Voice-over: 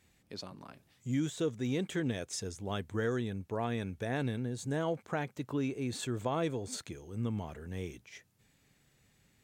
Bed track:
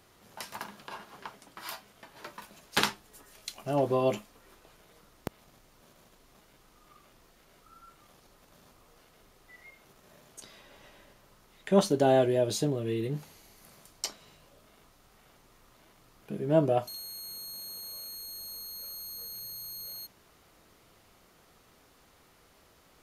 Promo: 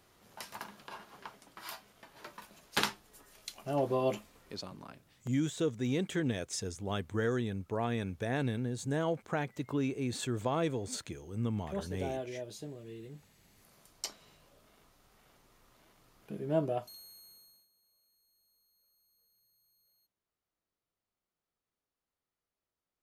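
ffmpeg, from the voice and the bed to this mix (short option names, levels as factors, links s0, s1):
-filter_complex "[0:a]adelay=4200,volume=1.12[s0];[1:a]volume=2.24,afade=t=out:st=4.43:d=0.53:silence=0.266073,afade=t=in:st=13.3:d=0.71:silence=0.281838,afade=t=out:st=16.27:d=1.41:silence=0.0421697[s1];[s0][s1]amix=inputs=2:normalize=0"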